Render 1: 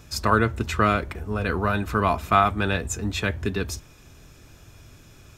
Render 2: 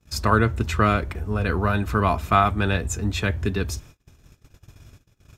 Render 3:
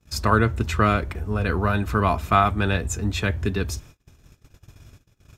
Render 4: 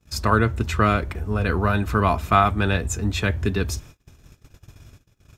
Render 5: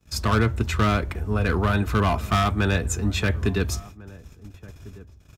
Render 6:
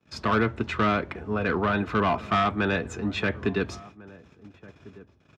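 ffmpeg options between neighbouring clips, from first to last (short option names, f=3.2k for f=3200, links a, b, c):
-af "equalizer=f=63:w=0.46:g=5,agate=range=-32dB:threshold=-43dB:ratio=16:detection=peak"
-af anull
-af "dynaudnorm=f=450:g=5:m=4dB"
-filter_complex "[0:a]acrossover=split=270|3900[a][b][c];[b]asoftclip=type=hard:threshold=-20dB[d];[a][d][c]amix=inputs=3:normalize=0,asplit=2[e][f];[f]adelay=1399,volume=-20dB,highshelf=f=4k:g=-31.5[g];[e][g]amix=inputs=2:normalize=0"
-af "highpass=180,lowpass=3.2k"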